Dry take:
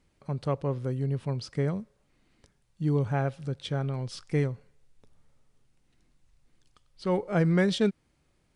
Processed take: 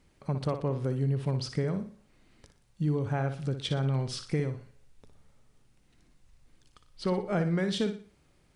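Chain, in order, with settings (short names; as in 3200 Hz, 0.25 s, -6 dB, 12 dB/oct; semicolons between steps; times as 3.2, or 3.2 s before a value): compressor 6:1, threshold -30 dBFS, peak gain reduction 11 dB; on a send: flutter echo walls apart 10.2 m, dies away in 0.39 s; on the sum: gain +4 dB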